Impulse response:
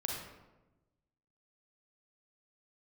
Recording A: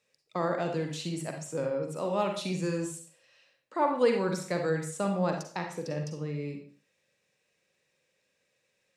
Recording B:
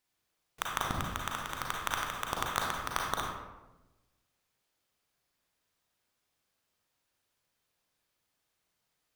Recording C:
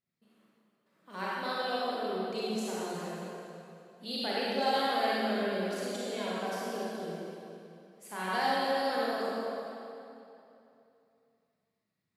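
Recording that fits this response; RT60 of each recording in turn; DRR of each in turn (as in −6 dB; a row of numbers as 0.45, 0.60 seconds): B; 0.45, 1.1, 2.8 seconds; 3.0, −1.0, −8.0 decibels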